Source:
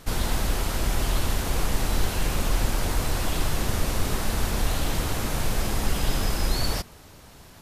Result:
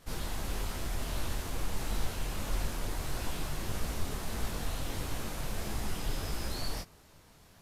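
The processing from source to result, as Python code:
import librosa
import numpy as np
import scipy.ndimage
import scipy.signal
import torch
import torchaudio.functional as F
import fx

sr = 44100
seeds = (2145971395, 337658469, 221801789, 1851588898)

y = fx.detune_double(x, sr, cents=54)
y = y * 10.0 ** (-6.5 / 20.0)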